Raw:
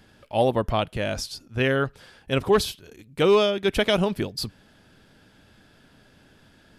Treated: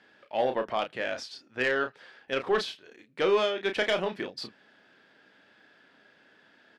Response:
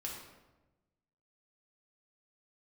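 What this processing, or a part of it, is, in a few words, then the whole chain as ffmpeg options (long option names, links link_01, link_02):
intercom: -filter_complex "[0:a]highpass=330,lowpass=4300,equalizer=frequency=1800:width_type=o:width=0.56:gain=6,asoftclip=type=tanh:threshold=-13dB,asplit=2[link_01][link_02];[link_02]adelay=32,volume=-7.5dB[link_03];[link_01][link_03]amix=inputs=2:normalize=0,volume=-4dB"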